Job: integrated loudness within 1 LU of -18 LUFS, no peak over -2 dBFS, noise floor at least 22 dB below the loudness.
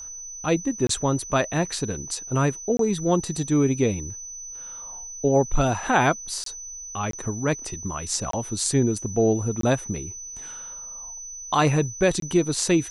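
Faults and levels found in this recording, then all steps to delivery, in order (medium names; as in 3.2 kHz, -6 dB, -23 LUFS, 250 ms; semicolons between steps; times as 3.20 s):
dropouts 7; longest dropout 23 ms; steady tone 6 kHz; tone level -35 dBFS; loudness -25.0 LUFS; peak level -5.5 dBFS; loudness target -18.0 LUFS
-> interpolate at 0.87/2.77/6.44/7.11/8.31/9.61/12.20 s, 23 ms; band-stop 6 kHz, Q 30; trim +7 dB; peak limiter -2 dBFS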